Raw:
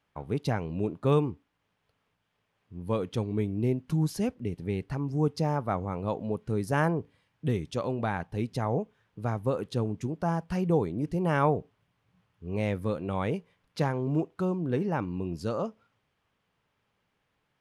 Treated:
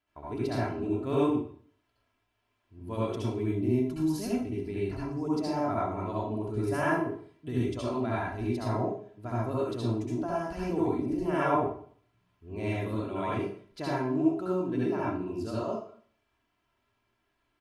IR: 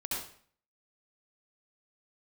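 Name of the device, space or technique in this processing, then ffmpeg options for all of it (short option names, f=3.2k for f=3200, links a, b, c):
microphone above a desk: -filter_complex "[0:a]aecho=1:1:3:0.69[a];[1:a]atrim=start_sample=2205[b];[a][b]afir=irnorm=-1:irlink=0,volume=-5dB"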